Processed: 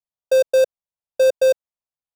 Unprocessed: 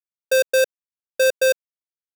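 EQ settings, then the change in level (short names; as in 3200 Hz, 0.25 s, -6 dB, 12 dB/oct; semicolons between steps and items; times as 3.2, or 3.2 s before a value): high shelf 2200 Hz -11.5 dB; high shelf 8900 Hz -6.5 dB; fixed phaser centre 770 Hz, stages 4; +6.5 dB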